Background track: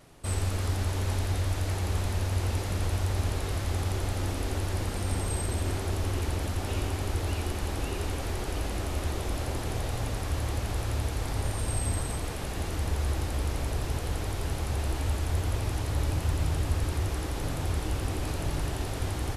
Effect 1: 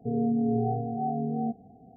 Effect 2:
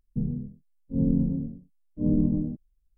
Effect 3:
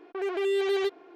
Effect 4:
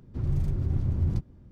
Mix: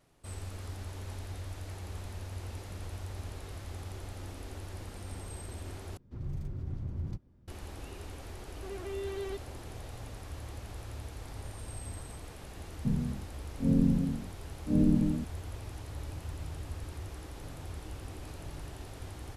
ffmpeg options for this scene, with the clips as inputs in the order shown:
-filter_complex "[0:a]volume=0.237[s0];[4:a]lowshelf=f=390:g=-3.5[s1];[3:a]lowshelf=f=250:g=10.5[s2];[s0]asplit=2[s3][s4];[s3]atrim=end=5.974[s5];[s1]atrim=end=1.51,asetpts=PTS-STARTPTS,volume=0.422[s6];[s4]atrim=start=7.476[s7];[s2]atrim=end=1.15,asetpts=PTS-STARTPTS,volume=0.178,afade=t=in:d=0.004:c=hsin,afade=t=out:st=1.146:d=0.004:c=hsin,adelay=8480[s8];[2:a]atrim=end=2.97,asetpts=PTS-STARTPTS,volume=0.794,afade=t=in:d=0.004:c=hsin,afade=t=out:st=2.966:d=0.004:c=hsin,adelay=12690[s9];[s5][s6]acrossfade=d=0.004:c1=hsin:c2=hsin[s10];[s10][s7]acrossfade=d=0.004:c1=hsin:c2=hsin[s11];[s11][s8][s9]amix=inputs=3:normalize=0"

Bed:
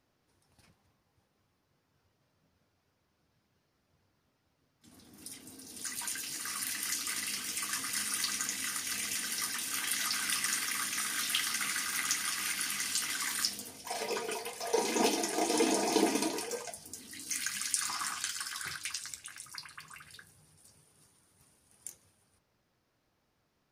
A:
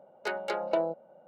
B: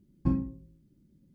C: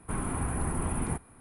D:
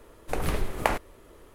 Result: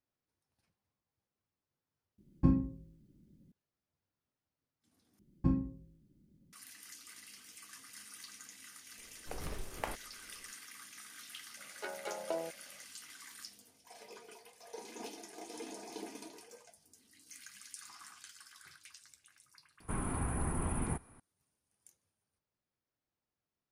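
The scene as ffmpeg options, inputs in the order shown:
-filter_complex "[2:a]asplit=2[s0][s1];[0:a]volume=0.133[s2];[1:a]tremolo=f=87:d=0.4[s3];[s2]asplit=3[s4][s5][s6];[s4]atrim=end=2.184[s7];[s0]atrim=end=1.34,asetpts=PTS-STARTPTS,volume=0.944[s8];[s5]atrim=start=3.516:end=5.194[s9];[s1]atrim=end=1.34,asetpts=PTS-STARTPTS,volume=0.668[s10];[s6]atrim=start=6.526[s11];[4:a]atrim=end=1.54,asetpts=PTS-STARTPTS,volume=0.188,afade=t=in:d=0.004:c=hsin,afade=t=out:st=1.536:d=0.004:c=hsin,adelay=396018S[s12];[s3]atrim=end=1.27,asetpts=PTS-STARTPTS,volume=0.398,afade=t=in:d=0.004:c=hsin,afade=t=out:st=1.266:d=0.004:c=hsin,adelay=11570[s13];[3:a]atrim=end=1.4,asetpts=PTS-STARTPTS,volume=0.596,afade=t=in:d=0.004:c=hsin,afade=t=out:st=1.396:d=0.004:c=hsin,adelay=19800[s14];[s7][s8]acrossfade=d=0.004:c1=hsin:c2=hsin[s15];[s15][s9]acrossfade=d=0.004:c1=hsin:c2=hsin[s16];[s16][s10]acrossfade=d=0.004:c1=hsin:c2=hsin[s17];[s17][s11]acrossfade=d=0.004:c1=hsin:c2=hsin[s18];[s18][s12][s13][s14]amix=inputs=4:normalize=0"

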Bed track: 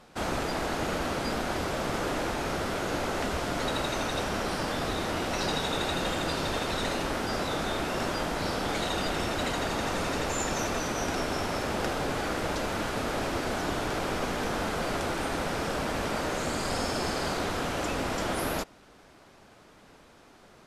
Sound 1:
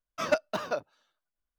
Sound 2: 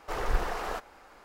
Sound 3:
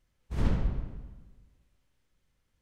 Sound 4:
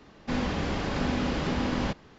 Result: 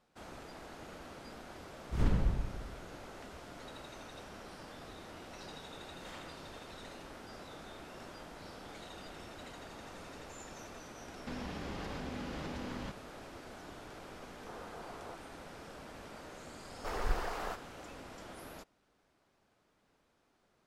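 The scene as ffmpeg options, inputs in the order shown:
-filter_complex "[3:a]asplit=2[s0][s1];[2:a]asplit=2[s2][s3];[0:a]volume=0.112[s4];[s0]alimiter=limit=0.158:level=0:latency=1:release=71[s5];[s1]highpass=1100[s6];[4:a]acompressor=threshold=0.0282:ratio=6:attack=3.2:release=140:knee=1:detection=peak[s7];[s2]asuperpass=centerf=660:order=4:qfactor=0.7[s8];[s5]atrim=end=2.61,asetpts=PTS-STARTPTS,volume=0.841,afade=t=in:d=0.004:c=hsin,afade=t=out:st=2.606:d=0.004:c=hsin,adelay=1610[s9];[s6]atrim=end=2.61,asetpts=PTS-STARTPTS,volume=0.501,afade=t=in:d=0.004:c=hsin,afade=t=out:st=2.606:d=0.004:c=hsin,adelay=250929S[s10];[s7]atrim=end=2.18,asetpts=PTS-STARTPTS,volume=0.447,afade=t=in:d=0.004:c=hsin,afade=t=out:st=2.176:d=0.004:c=hsin,adelay=10990[s11];[s8]atrim=end=1.24,asetpts=PTS-STARTPTS,volume=0.188,afade=t=in:d=0.004:c=hsin,afade=t=out:st=1.236:d=0.004:c=hsin,adelay=14380[s12];[s3]atrim=end=1.24,asetpts=PTS-STARTPTS,volume=0.531,afade=t=in:d=0.004:c=hsin,afade=t=out:st=1.236:d=0.004:c=hsin,adelay=16760[s13];[s4][s9][s10][s11][s12][s13]amix=inputs=6:normalize=0"

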